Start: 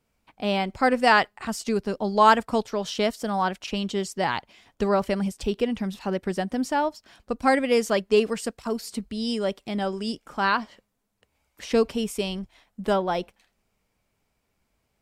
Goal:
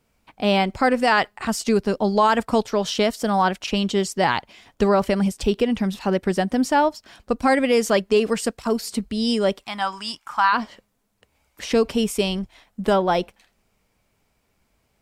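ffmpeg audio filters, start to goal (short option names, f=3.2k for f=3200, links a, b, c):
-filter_complex "[0:a]asplit=3[a][b][c];[a]afade=t=out:st=9.63:d=0.02[d];[b]lowshelf=f=670:t=q:w=3:g=-13,afade=t=in:st=9.63:d=0.02,afade=t=out:st=10.52:d=0.02[e];[c]afade=t=in:st=10.52:d=0.02[f];[d][e][f]amix=inputs=3:normalize=0,alimiter=limit=-14.5dB:level=0:latency=1:release=80,volume=6dB"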